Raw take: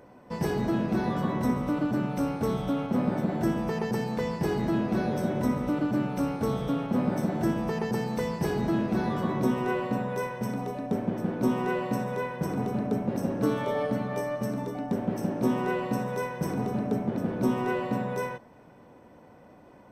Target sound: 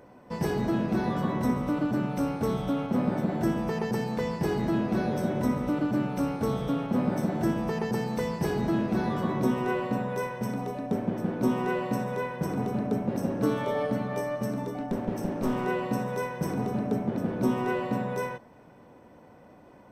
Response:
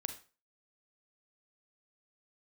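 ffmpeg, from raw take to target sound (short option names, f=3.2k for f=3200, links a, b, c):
-filter_complex "[0:a]asettb=1/sr,asplit=3[a][b][c];[a]atrim=end=14.794[d];[b]atrim=start=14.79:end=15.65,asetpts=PTS-STARTPTS,afade=t=in:d=0.004:c=qsin,afade=t=out:st=0.856:d=0.004:c=qsin,aeval=exprs='clip(val(0),-1,0.0355)':c=same[e];[c]atrim=start=15.646[f];[d][e]acrossfade=d=0.004:c1=hsin:c2=qsin[g];[g][f]acrossfade=d=0.004:c1=qsin:c2=hsin"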